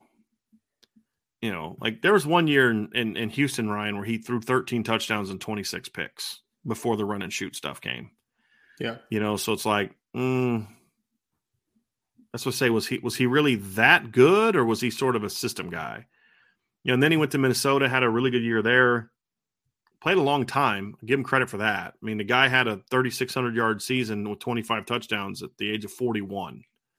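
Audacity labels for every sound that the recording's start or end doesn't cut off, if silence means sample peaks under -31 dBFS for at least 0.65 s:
1.430000	8.010000	sound
8.810000	10.620000	sound
12.340000	15.980000	sound
16.860000	19.010000	sound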